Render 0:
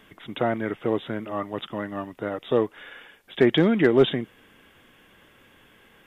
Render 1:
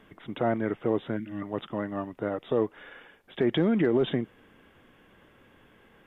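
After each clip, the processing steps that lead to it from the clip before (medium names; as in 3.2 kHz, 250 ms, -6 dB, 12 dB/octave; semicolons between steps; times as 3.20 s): time-frequency box 1.17–1.42 s, 330–1400 Hz -19 dB; treble shelf 2.2 kHz -11.5 dB; peak limiter -15.5 dBFS, peak gain reduction 8.5 dB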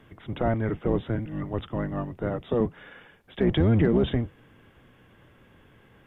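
octave divider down 1 oct, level +3 dB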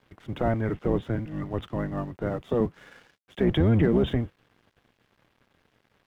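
crossover distortion -54 dBFS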